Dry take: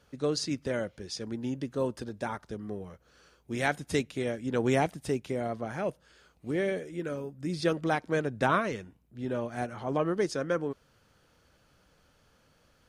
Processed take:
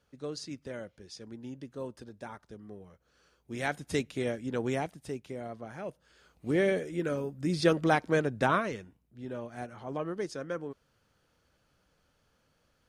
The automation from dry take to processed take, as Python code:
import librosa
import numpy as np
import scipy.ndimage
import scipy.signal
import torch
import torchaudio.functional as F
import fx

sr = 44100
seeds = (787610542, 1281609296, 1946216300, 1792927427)

y = fx.gain(x, sr, db=fx.line((2.89, -9.0), (4.27, 0.0), (4.87, -7.5), (5.87, -7.5), (6.53, 3.0), (8.02, 3.0), (9.23, -6.5)))